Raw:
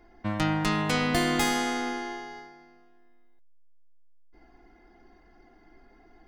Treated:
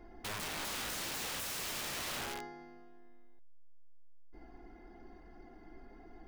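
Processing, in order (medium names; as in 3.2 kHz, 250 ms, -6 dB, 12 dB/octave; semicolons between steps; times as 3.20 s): tilt shelf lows +3.5 dB; compression 20:1, threshold -27 dBFS, peak gain reduction 9.5 dB; integer overflow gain 35 dB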